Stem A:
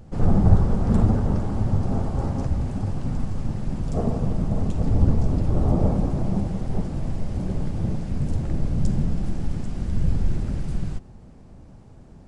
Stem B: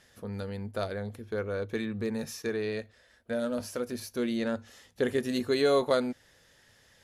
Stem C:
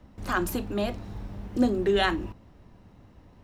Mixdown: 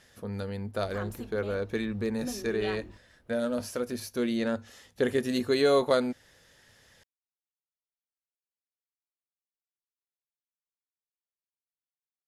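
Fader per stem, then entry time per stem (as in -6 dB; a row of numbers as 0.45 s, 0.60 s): mute, +1.5 dB, -14.0 dB; mute, 0.00 s, 0.65 s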